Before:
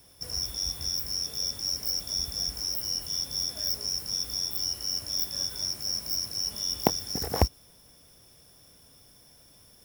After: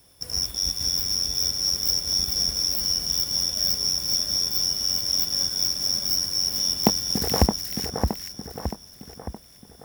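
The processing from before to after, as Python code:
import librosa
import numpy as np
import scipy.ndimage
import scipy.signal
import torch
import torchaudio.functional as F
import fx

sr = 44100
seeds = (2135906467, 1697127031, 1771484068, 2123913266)

p1 = fx.dynamic_eq(x, sr, hz=210.0, q=2.9, threshold_db=-56.0, ratio=4.0, max_db=7)
p2 = fx.fuzz(p1, sr, gain_db=25.0, gate_db=-34.0)
p3 = p1 + (p2 * 10.0 ** (-8.5 / 20.0))
y = fx.echo_split(p3, sr, split_hz=1900.0, low_ms=619, high_ms=429, feedback_pct=52, wet_db=-4)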